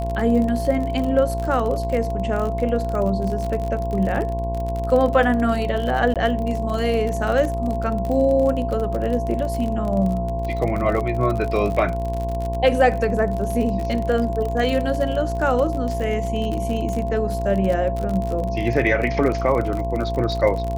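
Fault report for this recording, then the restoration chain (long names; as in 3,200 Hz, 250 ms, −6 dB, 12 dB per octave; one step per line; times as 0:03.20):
mains buzz 60 Hz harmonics 18 −26 dBFS
surface crackle 43 per second −25 dBFS
whistle 680 Hz −26 dBFS
0:06.14–0:06.16: drop-out 17 ms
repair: click removal
hum removal 60 Hz, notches 18
notch filter 680 Hz, Q 30
repair the gap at 0:06.14, 17 ms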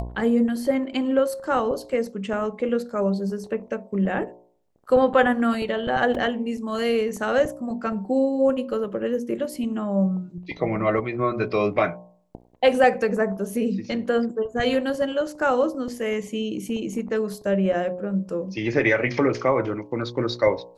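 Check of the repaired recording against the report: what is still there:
none of them is left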